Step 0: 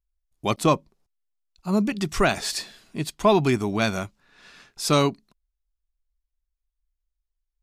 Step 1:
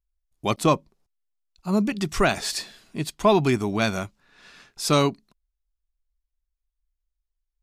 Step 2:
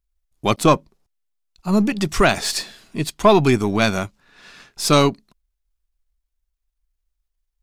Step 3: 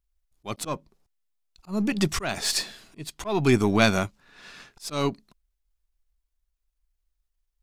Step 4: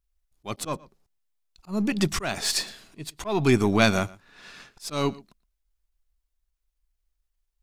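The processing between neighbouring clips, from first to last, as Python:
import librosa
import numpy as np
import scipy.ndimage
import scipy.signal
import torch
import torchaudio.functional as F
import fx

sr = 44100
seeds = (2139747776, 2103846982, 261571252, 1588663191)

y1 = x
y2 = np.where(y1 < 0.0, 10.0 ** (-3.0 / 20.0) * y1, y1)
y2 = y2 * librosa.db_to_amplitude(6.5)
y3 = fx.auto_swell(y2, sr, attack_ms=327.0)
y3 = y3 * librosa.db_to_amplitude(-1.5)
y4 = y3 + 10.0 ** (-22.0 / 20.0) * np.pad(y3, (int(117 * sr / 1000.0), 0))[:len(y3)]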